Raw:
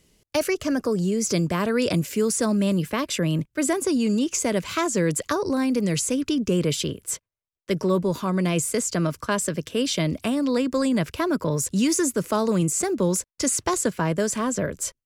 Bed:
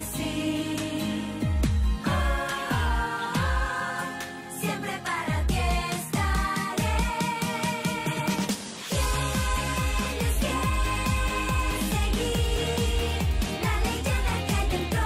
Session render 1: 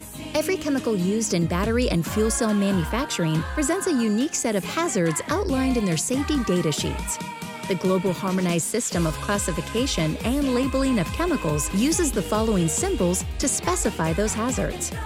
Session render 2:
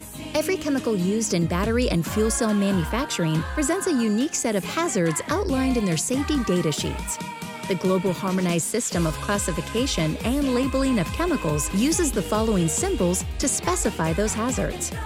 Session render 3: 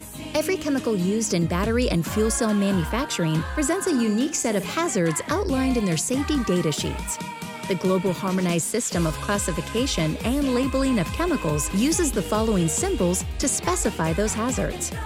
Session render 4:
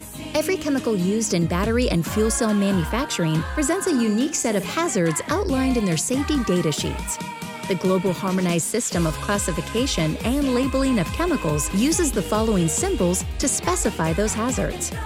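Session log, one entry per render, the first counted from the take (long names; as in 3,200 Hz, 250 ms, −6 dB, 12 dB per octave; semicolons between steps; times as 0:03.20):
mix in bed −5.5 dB
0:06.69–0:07.18: mu-law and A-law mismatch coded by A
0:03.80–0:04.63: flutter between parallel walls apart 9.4 metres, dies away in 0.27 s
level +1.5 dB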